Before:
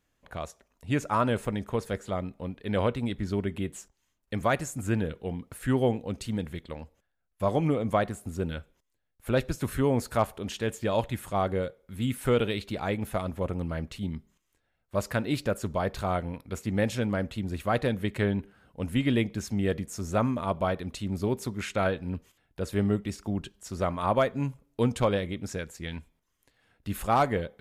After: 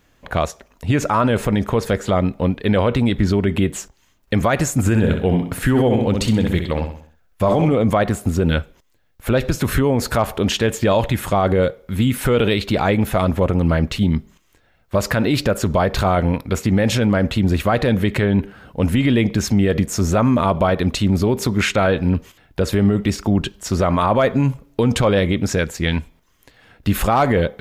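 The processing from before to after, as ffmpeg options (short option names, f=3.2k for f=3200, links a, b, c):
-filter_complex "[0:a]asettb=1/sr,asplit=3[a][b][c];[a]atrim=end=4.794[d];[b]atrim=start=4.79:end=7.73,asetpts=PTS-STARTPTS,afade=t=in:d=0.004:c=qsin,afade=t=out:st=2.936:d=0.004:c=qsin,aecho=1:1:64|128|192|256|320:0.398|0.175|0.0771|0.0339|0.0149,atrim=end_sample=129654[e];[c]atrim=start=7.726[f];[d][e]acrossfade=d=0.004:c1=hsin:c2=qsin[g];[g][f]acrossfade=d=0.004:c1=qsin:c2=hsin,equalizer=f=9.6k:t=o:w=0.87:g=-6.5,alimiter=level_in=24dB:limit=-1dB:release=50:level=0:latency=1,volume=-6.5dB"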